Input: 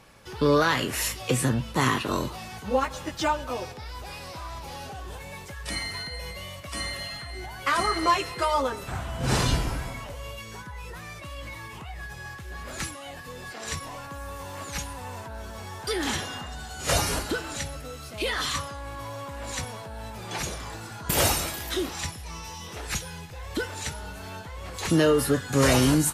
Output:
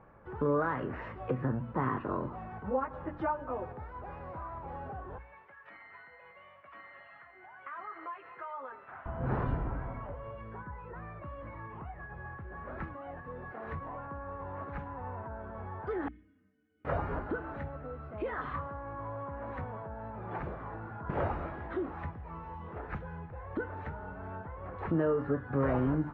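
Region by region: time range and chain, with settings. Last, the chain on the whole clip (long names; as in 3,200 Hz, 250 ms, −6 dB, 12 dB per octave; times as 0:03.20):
0:05.18–0:09.06: resonant band-pass 2,600 Hz, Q 0.97 + downward compressor 4 to 1, threshold −35 dBFS
0:16.08–0:16.85: formant filter i + stiff-string resonator 92 Hz, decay 0.34 s, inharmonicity 0.03
whole clip: low-pass filter 1,500 Hz 24 dB per octave; mains-hum notches 60/120/180/240/300 Hz; downward compressor 1.5 to 1, threshold −34 dBFS; level −2 dB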